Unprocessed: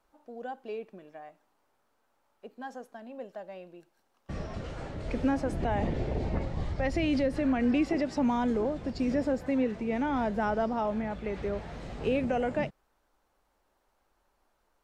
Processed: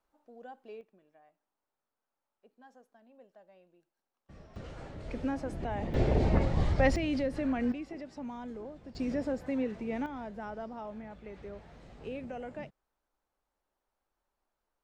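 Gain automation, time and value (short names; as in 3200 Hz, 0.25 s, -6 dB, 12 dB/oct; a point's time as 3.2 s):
-9 dB
from 0.81 s -16 dB
from 4.56 s -6 dB
from 5.94 s +5 dB
from 6.96 s -4 dB
from 7.72 s -14 dB
from 8.95 s -4.5 dB
from 10.06 s -12 dB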